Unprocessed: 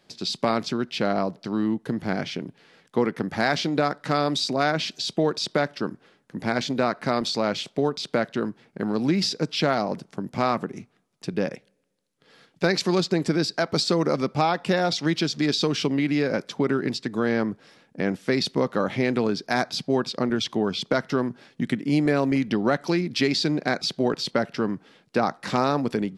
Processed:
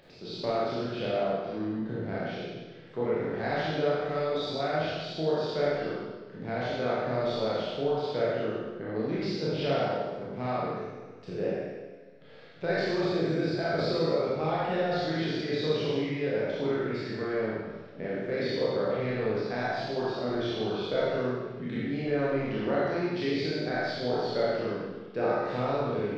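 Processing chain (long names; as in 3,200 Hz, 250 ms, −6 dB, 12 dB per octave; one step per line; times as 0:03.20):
peak hold with a decay on every bin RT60 0.94 s
octave-band graphic EQ 250/500/1,000/4,000 Hz −10/+4/−7/+3 dB
upward compression, threshold −32 dBFS
head-to-tape spacing loss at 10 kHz 37 dB
four-comb reverb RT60 1 s, combs from 25 ms, DRR −6 dB
level −9 dB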